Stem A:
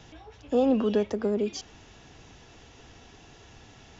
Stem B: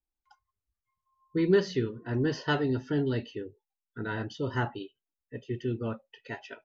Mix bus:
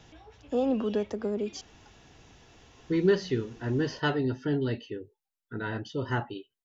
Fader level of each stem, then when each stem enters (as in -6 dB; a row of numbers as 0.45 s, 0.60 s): -4.0 dB, 0.0 dB; 0.00 s, 1.55 s